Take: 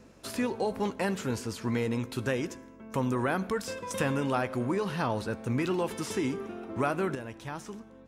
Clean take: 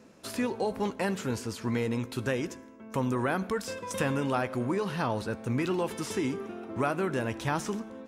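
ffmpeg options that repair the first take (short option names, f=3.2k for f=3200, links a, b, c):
-af "bandreject=f=47:t=h:w=4,bandreject=f=94:t=h:w=4,bandreject=f=141:t=h:w=4,bandreject=f=188:t=h:w=4,asetnsamples=n=441:p=0,asendcmd='7.15 volume volume 9dB',volume=0dB"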